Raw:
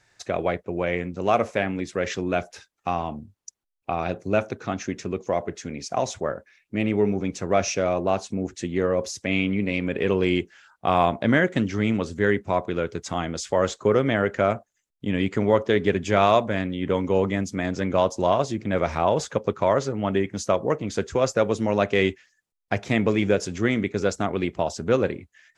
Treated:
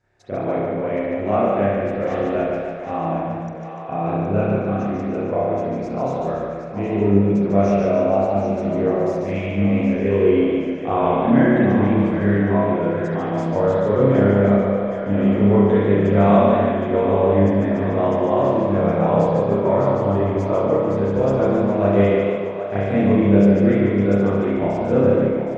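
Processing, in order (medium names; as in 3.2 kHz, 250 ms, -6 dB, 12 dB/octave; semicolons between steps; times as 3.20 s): tilt shelf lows +7.5 dB, about 1.2 kHz; two-band feedback delay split 470 Hz, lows 144 ms, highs 767 ms, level -9 dB; spring tank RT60 1.1 s, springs 30 ms, chirp 45 ms, DRR -9.5 dB; modulated delay 147 ms, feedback 50%, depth 55 cents, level -4.5 dB; trim -11.5 dB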